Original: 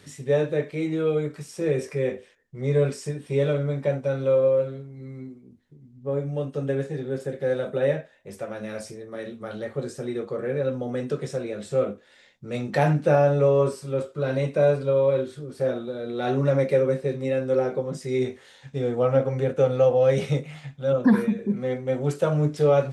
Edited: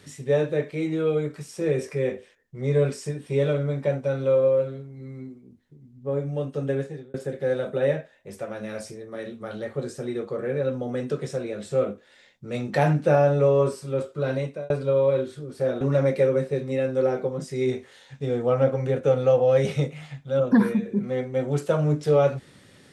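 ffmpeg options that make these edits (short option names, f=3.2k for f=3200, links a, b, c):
-filter_complex "[0:a]asplit=4[a][b][c][d];[a]atrim=end=7.14,asetpts=PTS-STARTPTS,afade=t=out:st=6.77:d=0.37[e];[b]atrim=start=7.14:end=14.7,asetpts=PTS-STARTPTS,afade=t=in:d=0.004:c=hsin,afade=t=out:st=7.16:d=0.4[f];[c]atrim=start=14.7:end=15.812,asetpts=PTS-STARTPTS,afade=t=in:d=0.004:c=hsin[g];[d]atrim=start=16.338[h];[e][f][g]concat=n=3:v=0:a=1[i];[i][h]acrossfade=d=0.004:c1=hsin:c2=hsin"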